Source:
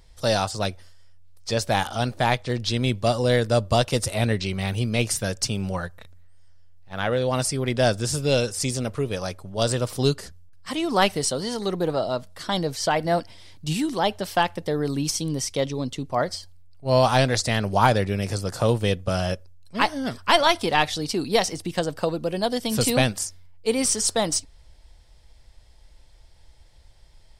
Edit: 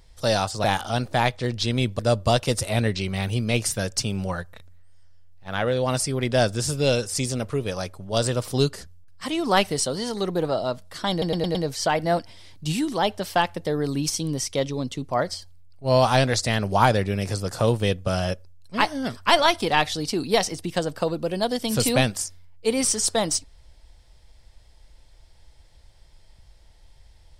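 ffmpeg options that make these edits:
-filter_complex "[0:a]asplit=7[a][b][c][d][e][f][g];[a]atrim=end=0.642[h];[b]atrim=start=1.698:end=3.052[i];[c]atrim=start=3.438:end=12.672[j];[d]atrim=start=12.558:end=12.672[k];[e]atrim=start=12.558:end=12.672[l];[f]atrim=start=12.558:end=12.672[m];[g]atrim=start=12.558[n];[h][i]acrossfade=d=0.004:c1=hsin:c2=hsin[o];[o][j]acrossfade=d=0.004:c1=hsin:c2=hsin[p];[p][k]acrossfade=d=0.004:c1=hsin:c2=hsin[q];[q][l]acrossfade=d=0.004:c1=hsin:c2=hsin[r];[r][m]acrossfade=d=0.004:c1=hsin:c2=hsin[s];[s][n]acrossfade=d=0.004:c1=hsin:c2=hsin"

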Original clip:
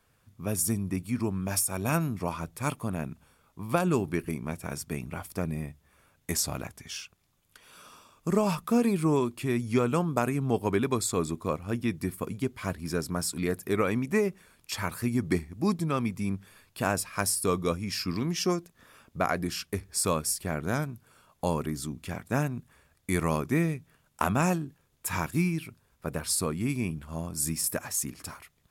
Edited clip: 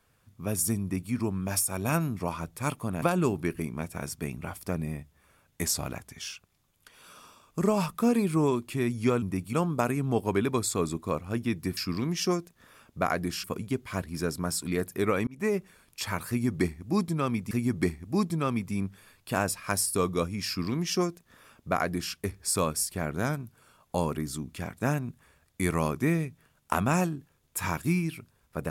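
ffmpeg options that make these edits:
-filter_complex "[0:a]asplit=8[a][b][c][d][e][f][g][h];[a]atrim=end=3.022[i];[b]atrim=start=3.708:end=9.912[j];[c]atrim=start=0.808:end=1.122[k];[d]atrim=start=9.908:end=12.152[l];[e]atrim=start=17.958:end=19.632[m];[f]atrim=start=12.148:end=13.98,asetpts=PTS-STARTPTS,afade=t=out:st=1.828:d=0.004:c=hsin[n];[g]atrim=start=13.98:end=16.222,asetpts=PTS-STARTPTS,afade=t=in:d=0.27[o];[h]atrim=start=14.998[p];[i][j]acrossfade=d=0.004:c1=hsin:c2=hsin[q];[q][k]acrossfade=d=0.004:c1=hsin:c2=hsin[r];[r][l]acrossfade=d=0.004:c1=hsin:c2=hsin[s];[s][m]acrossfade=d=0.004:c1=hsin:c2=hsin[t];[n][o]concat=n=2:v=0:a=1[u];[t][u]acrossfade=d=0.004:c1=hsin:c2=hsin[v];[v][p]acrossfade=d=0.004:c1=hsin:c2=hsin"

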